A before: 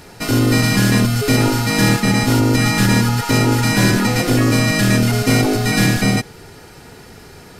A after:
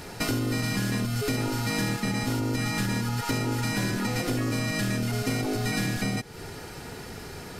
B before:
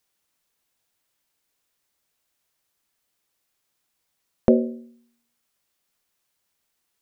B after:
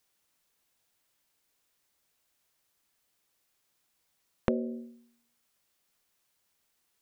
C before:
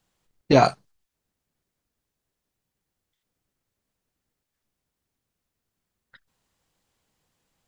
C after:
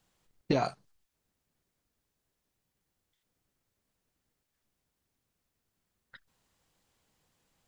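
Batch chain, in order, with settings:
compressor 8:1, threshold -25 dBFS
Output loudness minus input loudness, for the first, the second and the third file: -12.5, -11.5, -12.0 LU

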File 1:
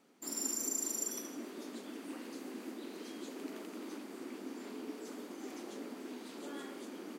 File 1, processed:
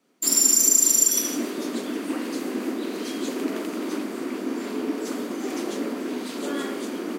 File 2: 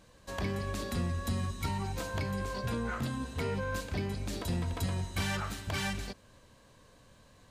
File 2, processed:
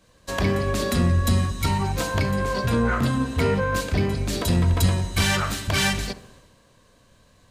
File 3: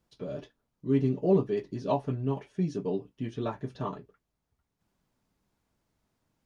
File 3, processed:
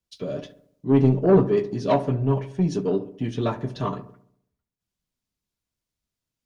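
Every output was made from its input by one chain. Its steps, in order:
notch 840 Hz, Q 12; in parallel at +2.5 dB: compressor, threshold -41 dBFS; on the sum: soft clip -19 dBFS; on a send: darkening echo 68 ms, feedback 68%, low-pass 1500 Hz, level -13 dB; on the sum: three-band expander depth 70%; match loudness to -23 LUFS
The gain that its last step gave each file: +9.5, +9.0, +6.0 dB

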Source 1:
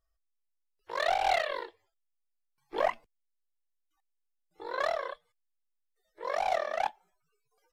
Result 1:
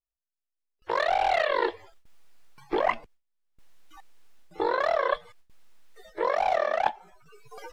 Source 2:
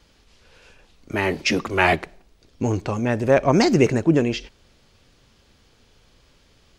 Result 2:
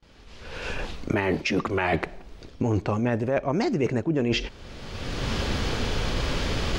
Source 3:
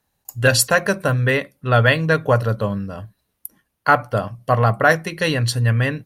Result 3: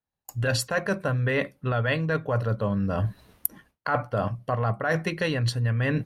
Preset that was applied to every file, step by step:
recorder AGC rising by 26 dB/s; gate with hold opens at -47 dBFS; LPF 3000 Hz 6 dB/oct; reverse; compressor 12:1, threshold -23 dBFS; reverse; match loudness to -27 LUFS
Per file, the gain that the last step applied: +1.5, +2.5, +1.0 dB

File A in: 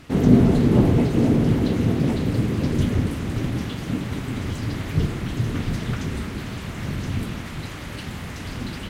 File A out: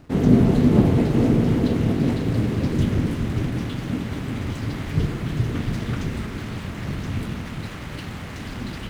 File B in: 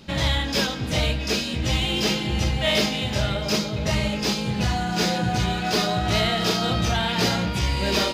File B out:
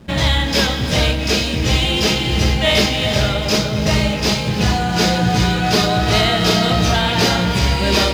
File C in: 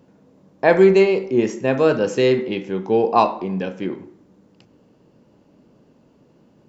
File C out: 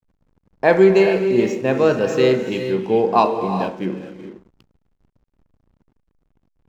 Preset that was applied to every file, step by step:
non-linear reverb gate 0.46 s rising, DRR 7 dB; backlash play -41 dBFS; normalise peaks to -2 dBFS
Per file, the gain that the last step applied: -0.5, +6.5, 0.0 dB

